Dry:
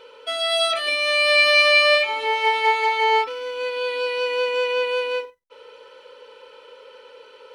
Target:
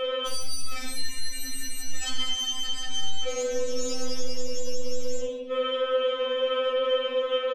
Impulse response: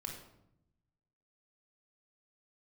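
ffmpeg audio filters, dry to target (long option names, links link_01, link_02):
-filter_complex "[0:a]crystalizer=i=4:c=0,aresample=8000,aresample=44100,alimiter=limit=-23dB:level=0:latency=1:release=112,aeval=exprs='0.0708*sin(PI/2*2.24*val(0)/0.0708)':channel_layout=same,acontrast=38[link_01];[1:a]atrim=start_sample=2205,afade=type=out:start_time=0.25:duration=0.01,atrim=end_sample=11466[link_02];[link_01][link_02]afir=irnorm=-1:irlink=0,acompressor=threshold=-23dB:ratio=6,equalizer=frequency=150:width=0.48:gain=11,asplit=4[link_03][link_04][link_05][link_06];[link_04]adelay=198,afreqshift=-120,volume=-20.5dB[link_07];[link_05]adelay=396,afreqshift=-240,volume=-27.8dB[link_08];[link_06]adelay=594,afreqshift=-360,volume=-35.2dB[link_09];[link_03][link_07][link_08][link_09]amix=inputs=4:normalize=0,afftfilt=real='re*3.46*eq(mod(b,12),0)':imag='im*3.46*eq(mod(b,12),0)':win_size=2048:overlap=0.75"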